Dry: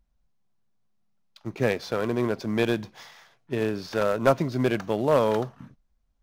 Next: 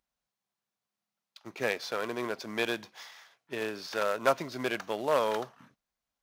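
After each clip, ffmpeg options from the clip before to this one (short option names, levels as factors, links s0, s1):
-af "highpass=f=980:p=1"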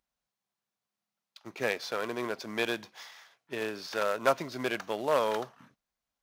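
-af anull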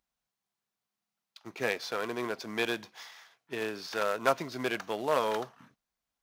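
-af "bandreject=f=570:w=12"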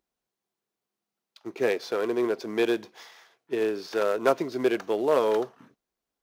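-af "equalizer=f=380:t=o:w=1.2:g=12.5,volume=0.891"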